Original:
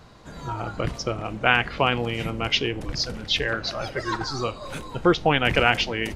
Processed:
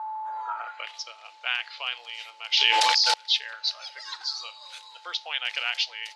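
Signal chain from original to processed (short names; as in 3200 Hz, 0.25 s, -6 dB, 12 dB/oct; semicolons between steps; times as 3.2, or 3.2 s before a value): HPF 540 Hz 24 dB/oct; whine 870 Hz -33 dBFS; band-pass sweep 1000 Hz -> 4300 Hz, 0.39–1.06; 2.57–3.14 fast leveller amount 100%; gain +4 dB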